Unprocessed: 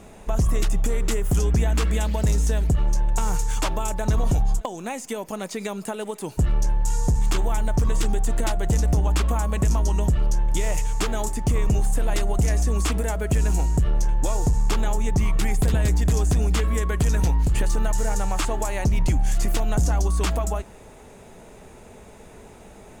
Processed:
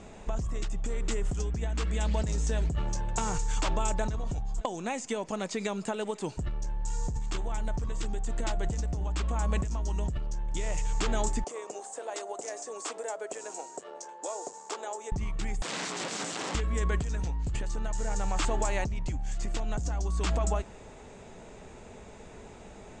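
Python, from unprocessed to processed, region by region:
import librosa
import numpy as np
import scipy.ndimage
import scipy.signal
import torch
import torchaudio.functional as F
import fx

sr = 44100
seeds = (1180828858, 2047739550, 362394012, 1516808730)

y = fx.chain(x, sr, fx.highpass(hz=52.0, slope=12),
    fx.doubler(ms=13.0, db=-13.0), at=(2.22, 3.38))
y = fx.chain(y, sr, fx.highpass(hz=450.0, slope=24),
    fx.peak_eq(hz=2600.0, db=-10.5, octaves=2.3), at=(11.44, 15.12))
y = fx.chain(y, sr, fx.peak_eq(hz=570.0, db=-6.5, octaves=1.6),
    fx.overflow_wrap(gain_db=27.0),
    fx.highpass(hz=160.0, slope=24), at=(15.62, 16.55))
y = scipy.signal.sosfilt(scipy.signal.ellip(4, 1.0, 60, 7900.0, 'lowpass', fs=sr, output='sos'), y)
y = fx.over_compress(y, sr, threshold_db=-24.0, ratio=-1.0)
y = y * 10.0 ** (-4.5 / 20.0)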